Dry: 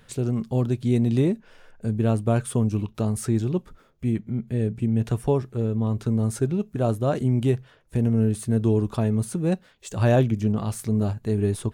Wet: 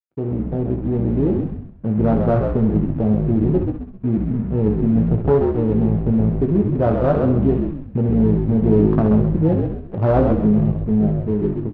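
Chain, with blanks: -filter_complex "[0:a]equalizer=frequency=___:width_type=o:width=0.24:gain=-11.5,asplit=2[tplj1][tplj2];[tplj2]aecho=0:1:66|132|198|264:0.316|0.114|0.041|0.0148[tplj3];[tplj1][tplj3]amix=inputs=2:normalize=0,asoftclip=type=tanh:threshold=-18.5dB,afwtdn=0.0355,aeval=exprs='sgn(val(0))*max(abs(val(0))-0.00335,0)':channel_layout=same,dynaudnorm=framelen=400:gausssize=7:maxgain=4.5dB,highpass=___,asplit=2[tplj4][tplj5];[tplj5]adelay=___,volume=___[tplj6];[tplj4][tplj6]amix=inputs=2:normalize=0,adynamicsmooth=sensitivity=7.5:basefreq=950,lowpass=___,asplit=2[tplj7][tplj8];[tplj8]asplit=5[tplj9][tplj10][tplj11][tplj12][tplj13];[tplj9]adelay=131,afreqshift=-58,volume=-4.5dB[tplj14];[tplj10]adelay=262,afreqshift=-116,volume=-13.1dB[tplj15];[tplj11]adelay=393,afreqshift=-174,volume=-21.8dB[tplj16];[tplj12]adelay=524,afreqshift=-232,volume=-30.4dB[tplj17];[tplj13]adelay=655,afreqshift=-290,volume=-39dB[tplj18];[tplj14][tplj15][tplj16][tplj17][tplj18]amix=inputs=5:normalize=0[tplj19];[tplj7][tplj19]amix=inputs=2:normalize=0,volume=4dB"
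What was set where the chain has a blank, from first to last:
100, 79, 19, -7dB, 2700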